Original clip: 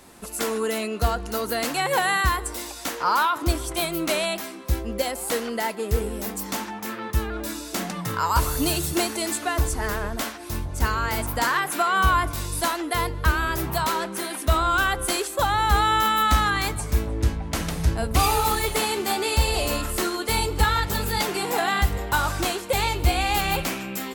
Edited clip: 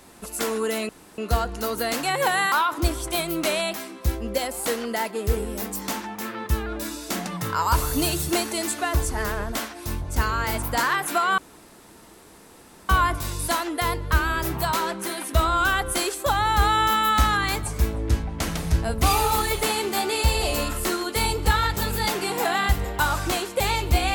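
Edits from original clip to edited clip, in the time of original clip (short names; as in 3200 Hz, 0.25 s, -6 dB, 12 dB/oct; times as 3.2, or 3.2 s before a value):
0.89 insert room tone 0.29 s
2.23–3.16 cut
12.02 insert room tone 1.51 s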